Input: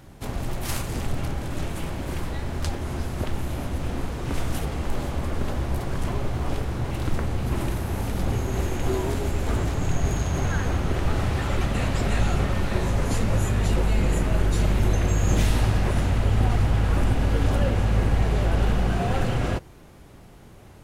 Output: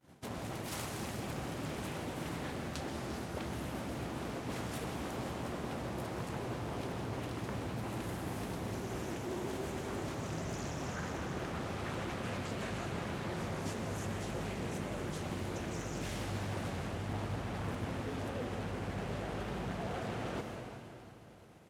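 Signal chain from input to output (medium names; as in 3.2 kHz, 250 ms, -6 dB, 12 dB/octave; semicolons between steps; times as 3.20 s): expander -38 dBFS; high-pass 140 Hz 12 dB/octave; reverse; compression 6:1, threshold -38 dBFS, peak gain reduction 15.5 dB; reverse; vibrato 13 Hz 87 cents; speed mistake 25 fps video run at 24 fps; feedback delay 347 ms, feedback 55%, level -15 dB; plate-style reverb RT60 2.4 s, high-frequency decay 0.9×, pre-delay 115 ms, DRR 4.5 dB; loudspeaker Doppler distortion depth 0.52 ms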